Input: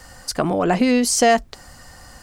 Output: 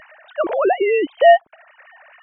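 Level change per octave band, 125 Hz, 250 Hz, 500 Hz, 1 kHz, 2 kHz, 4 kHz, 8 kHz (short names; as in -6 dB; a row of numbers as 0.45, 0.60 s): under -30 dB, -9.5 dB, +5.5 dB, +3.5 dB, +2.0 dB, -6.0 dB, under -40 dB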